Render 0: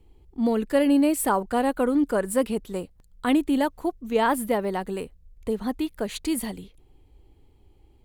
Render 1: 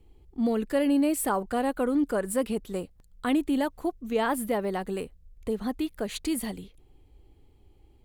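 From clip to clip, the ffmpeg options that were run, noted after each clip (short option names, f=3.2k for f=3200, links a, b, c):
-filter_complex "[0:a]bandreject=f=940:w=16,asplit=2[a][b];[b]alimiter=limit=-20.5dB:level=0:latency=1:release=97,volume=-1.5dB[c];[a][c]amix=inputs=2:normalize=0,volume=-6.5dB"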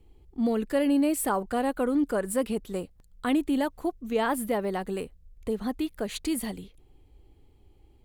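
-af anull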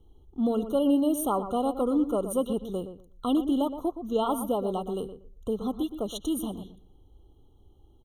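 -filter_complex "[0:a]asplit=2[a][b];[b]adelay=119,lowpass=f=1.7k:p=1,volume=-10dB,asplit=2[c][d];[d]adelay=119,lowpass=f=1.7k:p=1,volume=0.2,asplit=2[e][f];[f]adelay=119,lowpass=f=1.7k:p=1,volume=0.2[g];[a][c][e][g]amix=inputs=4:normalize=0,afftfilt=real='re*eq(mod(floor(b*sr/1024/1400),2),0)':imag='im*eq(mod(floor(b*sr/1024/1400),2),0)':win_size=1024:overlap=0.75"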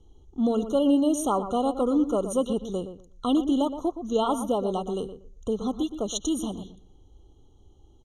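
-af "lowpass=f=6.6k:t=q:w=4,volume=2dB"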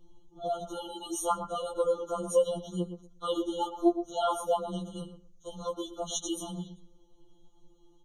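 -af "afftfilt=real='re*2.83*eq(mod(b,8),0)':imag='im*2.83*eq(mod(b,8),0)':win_size=2048:overlap=0.75"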